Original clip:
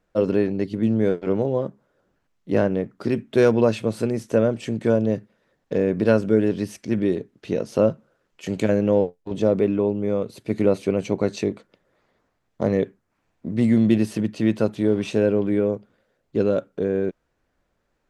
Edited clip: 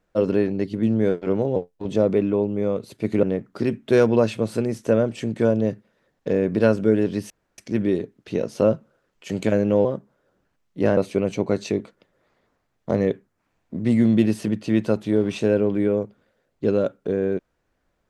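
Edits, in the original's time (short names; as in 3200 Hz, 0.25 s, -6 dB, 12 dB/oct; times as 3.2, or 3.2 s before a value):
1.56–2.68 swap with 9.02–10.69
6.75 insert room tone 0.28 s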